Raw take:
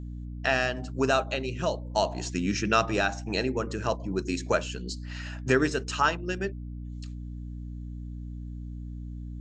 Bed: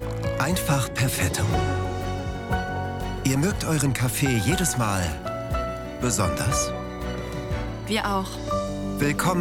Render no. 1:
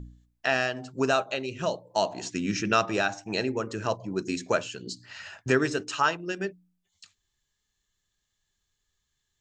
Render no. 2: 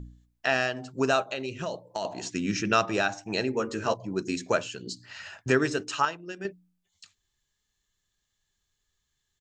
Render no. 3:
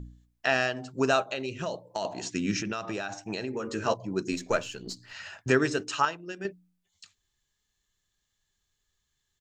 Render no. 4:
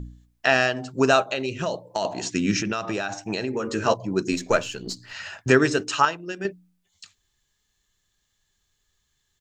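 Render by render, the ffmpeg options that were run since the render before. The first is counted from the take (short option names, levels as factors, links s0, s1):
-af "bandreject=f=60:t=h:w=4,bandreject=f=120:t=h:w=4,bandreject=f=180:t=h:w=4,bandreject=f=240:t=h:w=4,bandreject=f=300:t=h:w=4"
-filter_complex "[0:a]asettb=1/sr,asplit=3[s0][s1][s2];[s0]atrim=end=1.324[s3];[s1]atrim=start=1.32:end=2.05,asetpts=PTS-STARTPTS,afade=t=in:d=0.004:c=qsin,afade=t=out:st=0.726:d=0.004:c=qsin,acompressor=threshold=0.0447:ratio=6:attack=3.2:release=140:knee=1:detection=peak[s4];[s2]atrim=start=2.046[s5];[s3][s4]acrossfade=d=0.004:c1=hsin:c2=qsin[s6];[s6][s5]acrossfade=d=0.004:c1=qsin:c2=hsin,asplit=3[s7][s8][s9];[s7]afade=t=out:st=3.52:d=0.02[s10];[s8]asplit=2[s11][s12];[s12]adelay=13,volume=0.668[s13];[s11][s13]amix=inputs=2:normalize=0,afade=t=in:st=3.52:d=0.02,afade=t=out:st=3.93:d=0.02[s14];[s9]afade=t=in:st=3.93:d=0.02[s15];[s10][s14][s15]amix=inputs=3:normalize=0,asplit=3[s16][s17][s18];[s16]atrim=end=6.052[s19];[s17]atrim=start=6.048:end=6.452,asetpts=PTS-STARTPTS,volume=0.473[s20];[s18]atrim=start=6.448[s21];[s19][s20]acrossfade=d=0.004:c1=hsin:c2=hsin[s22];[s22][s21]acrossfade=d=0.004:c1=hsin:c2=hsin"
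-filter_complex "[0:a]asettb=1/sr,asplit=3[s0][s1][s2];[s0]atrim=end=2.614[s3];[s1]atrim=start=2.61:end=3.72,asetpts=PTS-STARTPTS,afade=t=in:d=0.004:c=qsin,afade=t=out:st=1.106:d=0.004:c=qsin,acompressor=threshold=0.0398:ratio=16:attack=3.2:release=140:knee=1:detection=peak[s4];[s2]atrim=start=3.716[s5];[s3][s4]acrossfade=d=0.004:c1=hsin:c2=qsin[s6];[s6][s5]acrossfade=d=0.004:c1=qsin:c2=hsin,asettb=1/sr,asplit=3[s7][s8][s9];[s7]atrim=end=4.324[s10];[s8]atrim=start=4.32:end=5.13,asetpts=PTS-STARTPTS,afade=t=in:d=0.004:c=qsin,afade=t=out:st=0.806:d=0.004:c=qsin,aeval=exprs='if(lt(val(0),0),0.708*val(0),val(0))':c=same[s11];[s9]atrim=start=5.126[s12];[s10][s11]acrossfade=d=0.004:c1=hsin:c2=qsin[s13];[s13][s12]acrossfade=d=0.004:c1=qsin:c2=hsin"
-af "volume=2"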